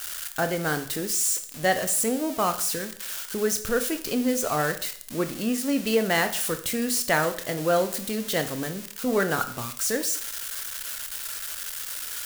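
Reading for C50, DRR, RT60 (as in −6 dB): 12.0 dB, 8.0 dB, 0.55 s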